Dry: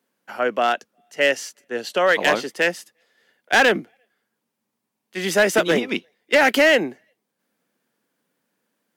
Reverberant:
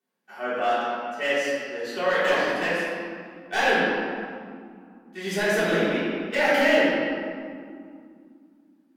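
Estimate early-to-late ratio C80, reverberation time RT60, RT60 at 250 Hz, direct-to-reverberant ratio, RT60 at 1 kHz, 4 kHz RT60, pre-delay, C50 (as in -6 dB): -1.0 dB, 2.4 s, 3.6 s, -12.5 dB, 2.3 s, 1.3 s, 3 ms, -3.0 dB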